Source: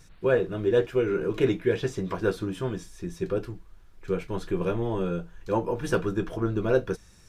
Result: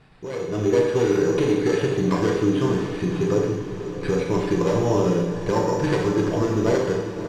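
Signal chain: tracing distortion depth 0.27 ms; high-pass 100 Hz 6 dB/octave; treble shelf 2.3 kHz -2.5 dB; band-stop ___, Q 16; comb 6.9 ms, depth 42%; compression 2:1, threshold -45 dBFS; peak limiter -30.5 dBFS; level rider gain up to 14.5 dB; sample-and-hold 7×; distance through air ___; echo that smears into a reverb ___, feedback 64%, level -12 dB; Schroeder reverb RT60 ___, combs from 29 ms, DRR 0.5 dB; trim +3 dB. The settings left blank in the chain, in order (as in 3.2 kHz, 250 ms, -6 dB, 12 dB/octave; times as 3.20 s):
1.4 kHz, 92 m, 576 ms, 0.91 s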